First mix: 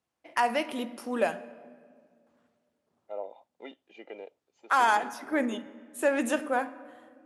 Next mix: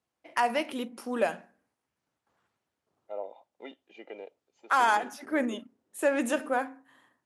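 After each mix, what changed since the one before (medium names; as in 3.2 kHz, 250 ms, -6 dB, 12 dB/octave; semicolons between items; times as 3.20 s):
reverb: off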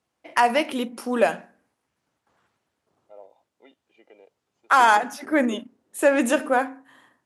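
first voice +7.5 dB; second voice -9.0 dB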